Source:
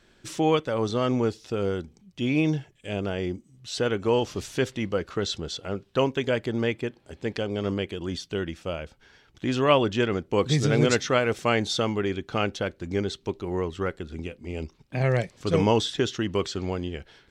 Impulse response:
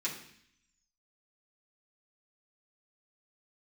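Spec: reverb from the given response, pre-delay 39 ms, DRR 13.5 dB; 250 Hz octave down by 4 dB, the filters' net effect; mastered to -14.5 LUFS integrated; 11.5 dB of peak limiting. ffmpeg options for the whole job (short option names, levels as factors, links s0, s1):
-filter_complex "[0:a]equalizer=f=250:t=o:g=-5.5,alimiter=limit=0.126:level=0:latency=1,asplit=2[s0][s1];[1:a]atrim=start_sample=2205,adelay=39[s2];[s1][s2]afir=irnorm=-1:irlink=0,volume=0.141[s3];[s0][s3]amix=inputs=2:normalize=0,volume=6.31"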